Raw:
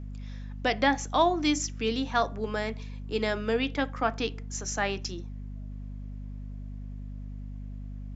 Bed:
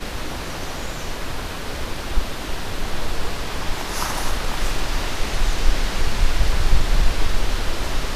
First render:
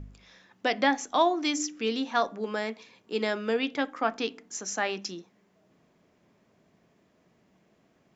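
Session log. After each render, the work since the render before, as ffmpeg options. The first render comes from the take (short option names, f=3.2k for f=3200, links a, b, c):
-af "bandreject=f=50:t=h:w=4,bandreject=f=100:t=h:w=4,bandreject=f=150:t=h:w=4,bandreject=f=200:t=h:w=4,bandreject=f=250:t=h:w=4,bandreject=f=300:t=h:w=4"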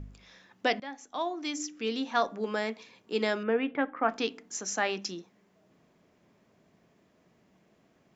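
-filter_complex "[0:a]asettb=1/sr,asplit=3[a][b][c];[a]atrim=end=3.434[d];[b]atrim=start=3.43:end=4.09,asetpts=PTS-STARTPTS,afade=t=in:d=0.004:c=qsin,afade=t=out:st=0.656:d=0.004:c=qsin,lowpass=f=2.3k:w=0.5412,lowpass=f=2.3k:w=1.3066[e];[c]atrim=start=4.086[f];[d][e]acrossfade=d=0.004:c1=hsin:c2=qsin[g];[g][f]acrossfade=d=0.004:c1=qsin:c2=hsin,asplit=2[h][i];[h]atrim=end=0.8,asetpts=PTS-STARTPTS,afade=t=out:st=0.796:d=0.004:c=hsin:silence=0.0891251[j];[i]atrim=start=0.8,asetpts=PTS-STARTPTS,afade=t=in:d=1.6:silence=0.0891251[k];[j][k]concat=n=2:v=0:a=1"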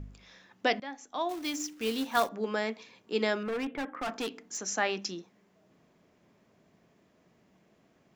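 -filter_complex "[0:a]asettb=1/sr,asplit=3[a][b][c];[a]atrim=end=1.294[d];[b]atrim=start=1.29:end=2.29,asetpts=PTS-STARTPTS,afade=t=in:d=0.004:c=qsin,afade=t=out:st=0.996:d=0.004:c=qsin,acrusher=bits=3:mode=log:mix=0:aa=0.000001[e];[c]atrim=start=2.286[f];[d][e]acrossfade=d=0.004:c1=hsin:c2=qsin[g];[g][f]acrossfade=d=0.004:c1=qsin:c2=hsin,asettb=1/sr,asplit=3[h][i][j];[h]atrim=end=3.424[k];[i]atrim=start=3.42:end=4.67,asetpts=PTS-STARTPTS,afade=t=in:d=0.004:c=qsin,afade=t=out:st=1.246:d=0.004:c=qsin,volume=30.5dB,asoftclip=hard,volume=-30.5dB[l];[j]atrim=start=4.666[m];[k][l]acrossfade=d=0.004:c1=hsin:c2=qsin[n];[n][m]acrossfade=d=0.004:c1=qsin:c2=hsin"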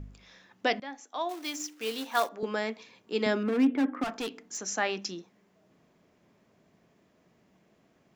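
-filter_complex "[0:a]asettb=1/sr,asplit=3[a][b][c];[a]atrim=end=1.004[d];[b]atrim=start=1:end=2.43,asetpts=PTS-STARTPTS,afade=t=in:d=0.004:c=qsin,afade=t=out:st=1.426:d=0.004:c=qsin,highpass=340[e];[c]atrim=start=2.426[f];[d][e]acrossfade=d=0.004:c1=hsin:c2=qsin[g];[g][f]acrossfade=d=0.004:c1=qsin:c2=hsin,asettb=1/sr,asplit=3[h][i][j];[h]atrim=end=3.264[k];[i]atrim=start=3.26:end=4.04,asetpts=PTS-STARTPTS,afade=t=in:d=0.004:c=qsin,afade=t=out:st=0.776:d=0.004:c=qsin,highpass=f=250:t=q:w=4.9[l];[j]atrim=start=4.036[m];[k][l]acrossfade=d=0.004:c1=hsin:c2=qsin[n];[n][m]acrossfade=d=0.004:c1=qsin:c2=hsin"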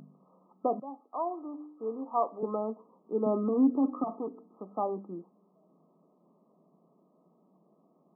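-af "afftfilt=real='re*between(b*sr/4096,150,1300)':imag='im*between(b*sr/4096,150,1300)':win_size=4096:overlap=0.75"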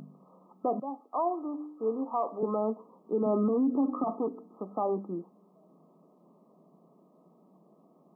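-af "acontrast=23,alimiter=limit=-20.5dB:level=0:latency=1:release=45"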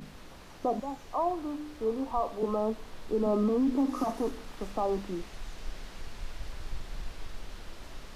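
-filter_complex "[1:a]volume=-21.5dB[a];[0:a][a]amix=inputs=2:normalize=0"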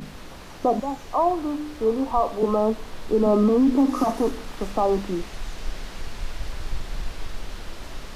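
-af "volume=8.5dB"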